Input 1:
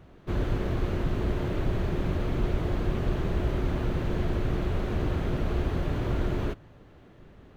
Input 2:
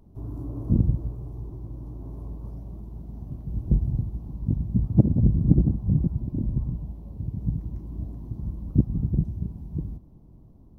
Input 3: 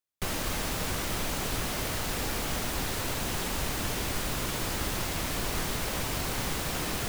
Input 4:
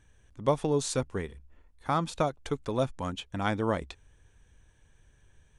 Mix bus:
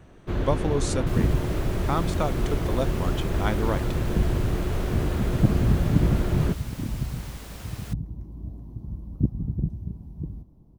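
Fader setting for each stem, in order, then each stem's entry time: +1.5 dB, -3.0 dB, -11.5 dB, +0.5 dB; 0.00 s, 0.45 s, 0.85 s, 0.00 s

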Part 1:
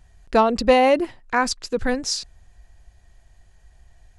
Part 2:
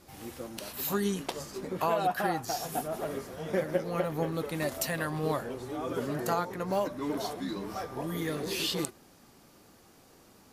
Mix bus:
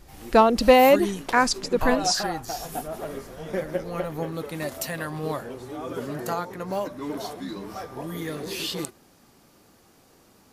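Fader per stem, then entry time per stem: +0.5 dB, +1.0 dB; 0.00 s, 0.00 s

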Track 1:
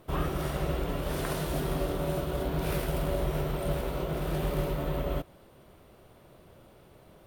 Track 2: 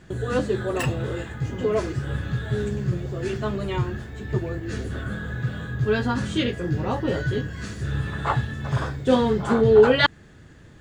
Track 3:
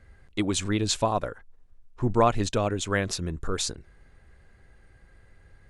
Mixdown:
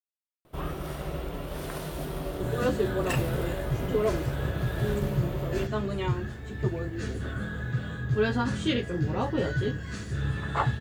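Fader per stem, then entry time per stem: -3.5 dB, -3.0 dB, mute; 0.45 s, 2.30 s, mute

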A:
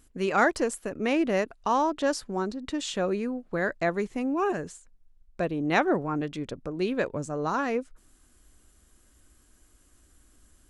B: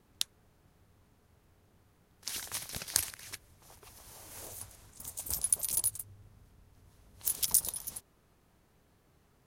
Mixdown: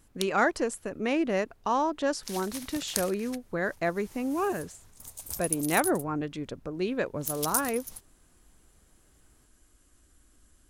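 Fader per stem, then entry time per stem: -2.0 dB, -2.0 dB; 0.00 s, 0.00 s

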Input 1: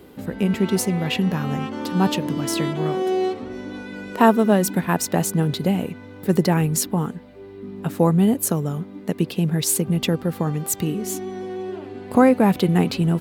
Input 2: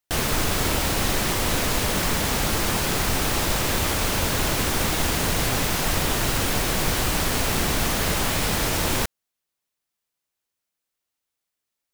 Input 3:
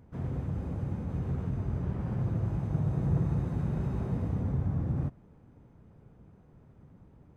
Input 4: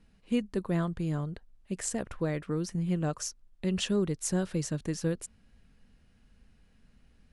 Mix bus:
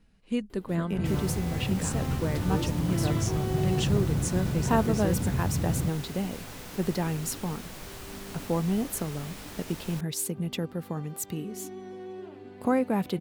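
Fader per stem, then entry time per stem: -10.5 dB, -19.5 dB, +1.5 dB, -0.5 dB; 0.50 s, 0.95 s, 0.80 s, 0.00 s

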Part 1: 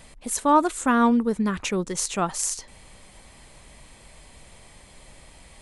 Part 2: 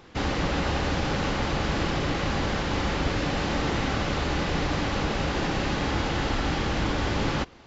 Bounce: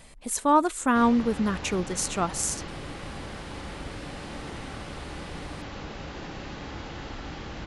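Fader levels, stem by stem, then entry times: -2.0 dB, -11.5 dB; 0.00 s, 0.80 s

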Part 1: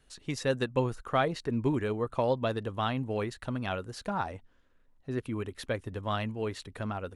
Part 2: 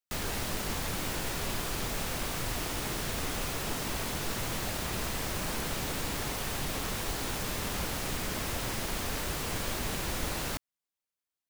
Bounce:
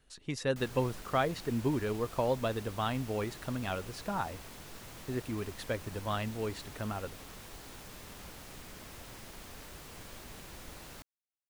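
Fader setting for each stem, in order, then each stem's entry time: -2.5 dB, -14.5 dB; 0.00 s, 0.45 s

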